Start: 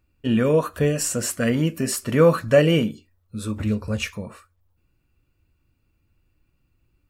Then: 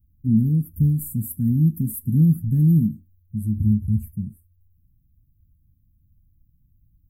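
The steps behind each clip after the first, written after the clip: inverse Chebyshev band-stop 510–6200 Hz, stop band 50 dB; trim +7 dB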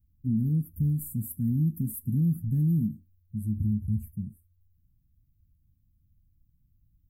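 peak limiter -13 dBFS, peak gain reduction 4 dB; trim -6 dB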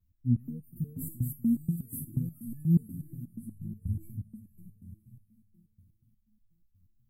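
vibrato 0.41 Hz 15 cents; echo that smears into a reverb 500 ms, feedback 41%, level -9 dB; resonator arpeggio 8.3 Hz 88–870 Hz; trim +7.5 dB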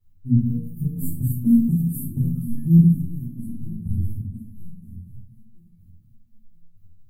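simulated room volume 320 m³, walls furnished, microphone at 4.3 m

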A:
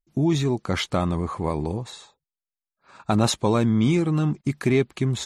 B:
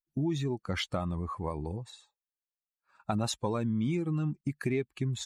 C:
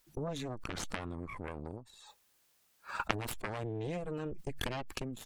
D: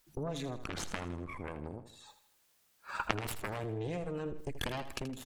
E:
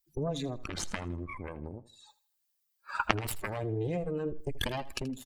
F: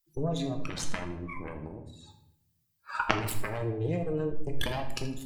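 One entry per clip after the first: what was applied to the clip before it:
expander on every frequency bin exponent 1.5; compression 3:1, threshold -26 dBFS, peak gain reduction 7.5 dB; trim -2.5 dB
Chebyshev shaper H 2 -12 dB, 3 -8 dB, 4 -12 dB, 5 -36 dB, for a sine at -15.5 dBFS; swell ahead of each attack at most 26 dB/s; trim +3.5 dB
feedback delay 80 ms, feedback 45%, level -12 dB
expander on every frequency bin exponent 1.5; trim +6.5 dB
simulated room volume 200 m³, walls mixed, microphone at 0.61 m

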